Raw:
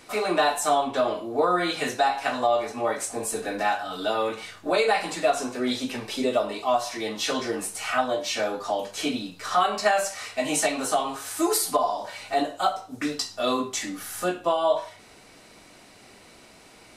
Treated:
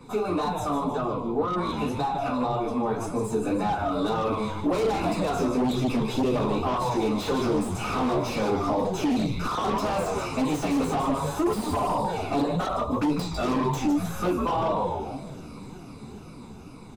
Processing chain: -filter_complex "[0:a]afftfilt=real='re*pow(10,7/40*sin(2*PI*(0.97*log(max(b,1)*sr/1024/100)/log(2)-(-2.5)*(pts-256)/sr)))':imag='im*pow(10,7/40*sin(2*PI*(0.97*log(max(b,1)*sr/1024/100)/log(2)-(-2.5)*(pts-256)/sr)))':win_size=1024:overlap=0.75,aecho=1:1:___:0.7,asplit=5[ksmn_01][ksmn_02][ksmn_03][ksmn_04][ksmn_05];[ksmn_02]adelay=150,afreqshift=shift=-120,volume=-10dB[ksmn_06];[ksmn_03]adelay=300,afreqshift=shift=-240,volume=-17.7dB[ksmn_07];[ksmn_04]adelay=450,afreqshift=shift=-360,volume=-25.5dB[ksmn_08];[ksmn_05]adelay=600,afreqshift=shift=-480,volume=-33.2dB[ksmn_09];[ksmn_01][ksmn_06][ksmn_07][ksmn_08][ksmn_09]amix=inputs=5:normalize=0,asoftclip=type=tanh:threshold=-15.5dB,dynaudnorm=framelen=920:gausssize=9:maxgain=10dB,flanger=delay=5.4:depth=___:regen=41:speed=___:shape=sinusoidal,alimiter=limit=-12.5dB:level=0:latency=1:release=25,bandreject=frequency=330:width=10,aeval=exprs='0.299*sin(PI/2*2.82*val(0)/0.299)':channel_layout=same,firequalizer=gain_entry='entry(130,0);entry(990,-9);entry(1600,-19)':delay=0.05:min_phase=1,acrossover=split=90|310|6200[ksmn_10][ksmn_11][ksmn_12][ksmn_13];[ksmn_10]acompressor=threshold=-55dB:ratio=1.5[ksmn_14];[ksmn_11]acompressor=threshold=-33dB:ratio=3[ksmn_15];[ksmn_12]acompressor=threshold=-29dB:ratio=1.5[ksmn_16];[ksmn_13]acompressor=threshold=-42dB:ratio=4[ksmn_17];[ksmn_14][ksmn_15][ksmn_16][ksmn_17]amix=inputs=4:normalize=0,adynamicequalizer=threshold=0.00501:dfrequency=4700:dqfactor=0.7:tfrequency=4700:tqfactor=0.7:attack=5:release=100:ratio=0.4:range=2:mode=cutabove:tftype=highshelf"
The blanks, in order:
0.8, 8.6, 1.9